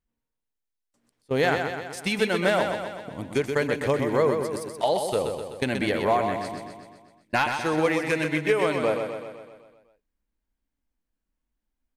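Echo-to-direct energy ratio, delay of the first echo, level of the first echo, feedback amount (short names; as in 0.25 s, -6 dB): -4.0 dB, 0.127 s, -6.0 dB, 58%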